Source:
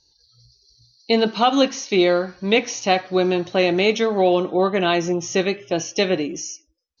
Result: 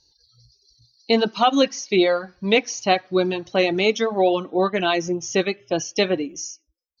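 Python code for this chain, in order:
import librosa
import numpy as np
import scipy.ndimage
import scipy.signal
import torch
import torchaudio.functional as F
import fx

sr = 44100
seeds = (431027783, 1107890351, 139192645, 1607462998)

y = fx.dereverb_blind(x, sr, rt60_s=1.4)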